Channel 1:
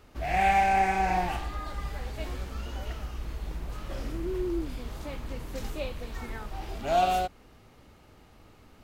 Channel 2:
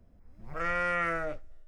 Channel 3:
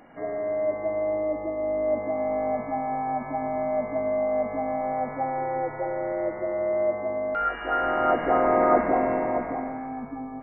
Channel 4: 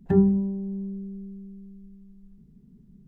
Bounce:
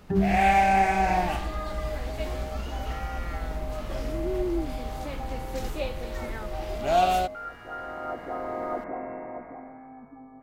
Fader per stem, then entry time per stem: +2.5, −12.0, −12.0, −5.5 decibels; 0.00, 2.30, 0.00, 0.00 seconds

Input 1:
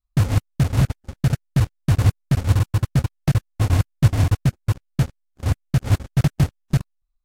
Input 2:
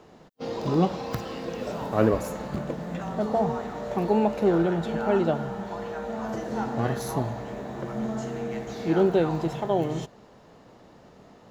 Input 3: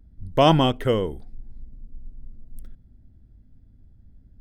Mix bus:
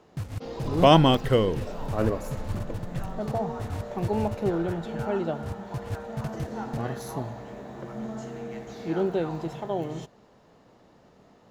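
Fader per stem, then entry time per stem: −16.0, −5.0, 0.0 decibels; 0.00, 0.00, 0.45 seconds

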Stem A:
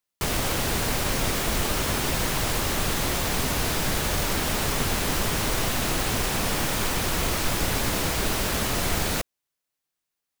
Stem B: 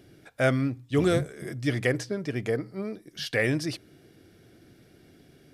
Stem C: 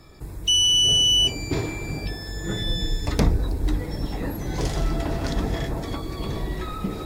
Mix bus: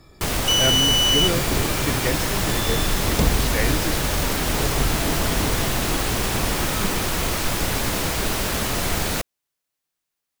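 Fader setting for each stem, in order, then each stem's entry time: +2.0, −1.0, −1.0 decibels; 0.00, 0.20, 0.00 seconds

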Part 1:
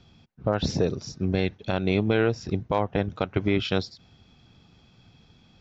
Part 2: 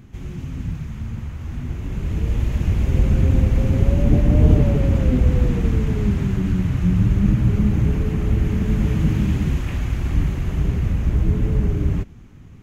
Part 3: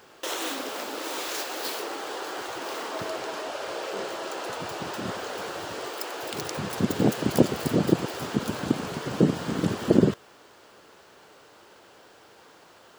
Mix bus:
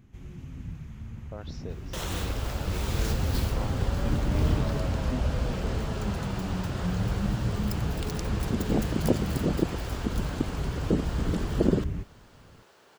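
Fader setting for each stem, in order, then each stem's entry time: −17.0, −11.5, −5.0 decibels; 0.85, 0.00, 1.70 seconds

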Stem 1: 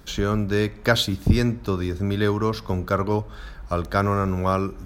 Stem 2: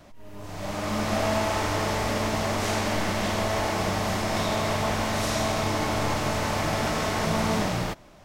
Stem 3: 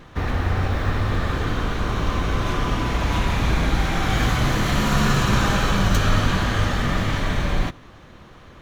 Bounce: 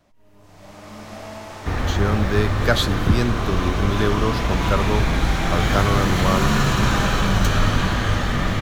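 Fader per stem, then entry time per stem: 0.0, −10.5, +0.5 decibels; 1.80, 0.00, 1.50 seconds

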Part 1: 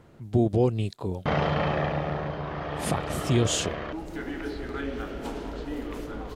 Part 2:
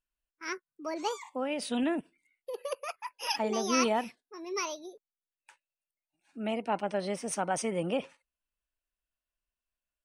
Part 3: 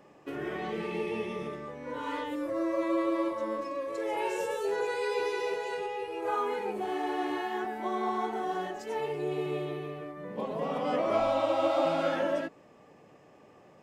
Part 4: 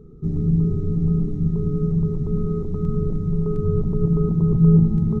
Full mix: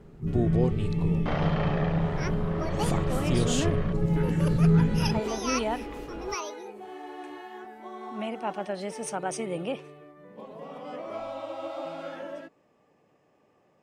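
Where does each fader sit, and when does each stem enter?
−4.5, −1.0, −9.0, −6.5 decibels; 0.00, 1.75, 0.00, 0.00 seconds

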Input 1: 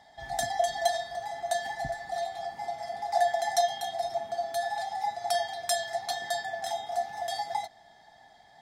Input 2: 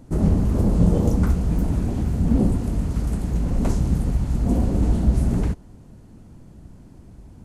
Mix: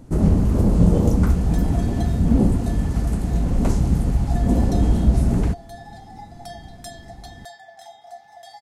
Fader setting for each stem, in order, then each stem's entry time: −10.0, +2.0 decibels; 1.15, 0.00 seconds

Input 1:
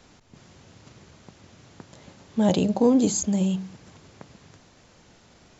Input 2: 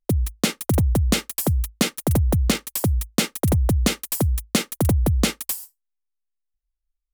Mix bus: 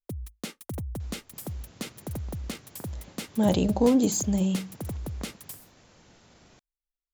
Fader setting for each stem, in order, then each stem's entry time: −2.0, −15.5 decibels; 1.00, 0.00 seconds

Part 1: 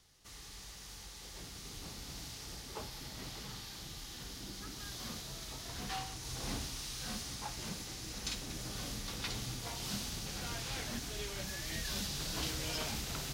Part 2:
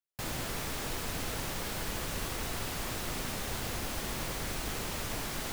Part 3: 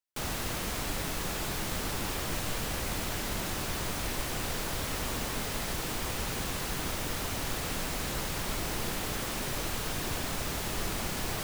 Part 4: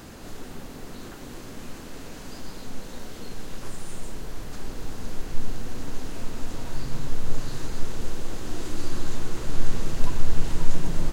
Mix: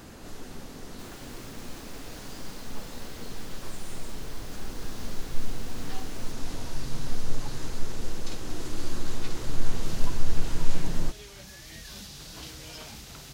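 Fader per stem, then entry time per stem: −4.5 dB, −13.0 dB, muted, −3.0 dB; 0.00 s, 0.80 s, muted, 0.00 s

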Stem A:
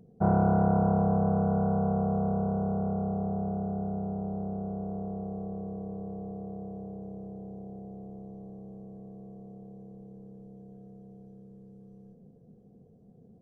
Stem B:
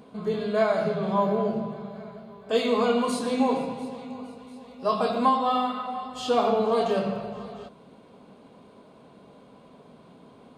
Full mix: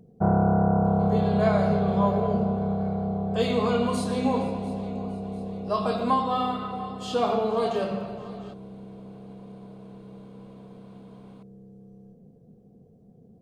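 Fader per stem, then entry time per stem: +2.5, −2.0 decibels; 0.00, 0.85 seconds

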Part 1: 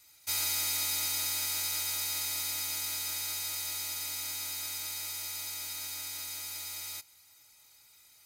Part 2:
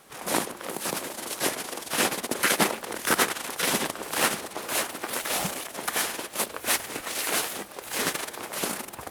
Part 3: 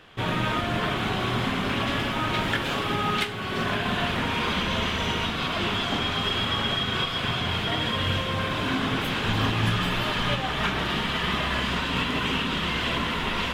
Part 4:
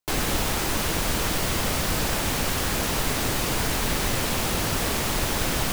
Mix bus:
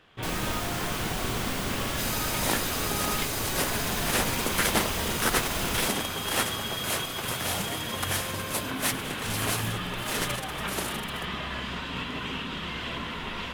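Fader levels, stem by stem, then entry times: −3.5, −3.5, −7.5, −7.5 decibels; 1.70, 2.15, 0.00, 0.15 seconds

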